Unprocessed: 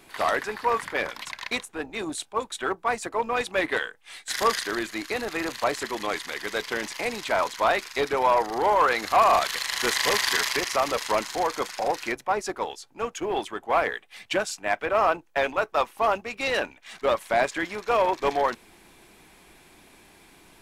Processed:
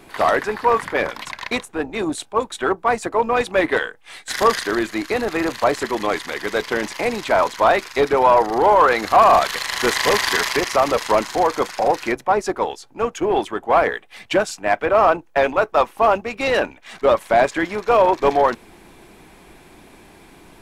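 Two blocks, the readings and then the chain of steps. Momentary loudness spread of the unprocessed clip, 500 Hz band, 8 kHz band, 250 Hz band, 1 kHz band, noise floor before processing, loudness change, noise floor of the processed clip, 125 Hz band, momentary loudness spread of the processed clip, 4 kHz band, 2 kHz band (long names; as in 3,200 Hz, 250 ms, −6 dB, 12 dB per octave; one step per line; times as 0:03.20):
9 LU, +8.5 dB, +2.0 dB, +9.5 dB, +7.0 dB, −55 dBFS, +7.0 dB, −48 dBFS, +9.5 dB, 9 LU, +3.0 dB, +5.0 dB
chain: tilt shelving filter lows +4 dB, about 1,500 Hz
soft clipping −8.5 dBFS, distortion −24 dB
level +6 dB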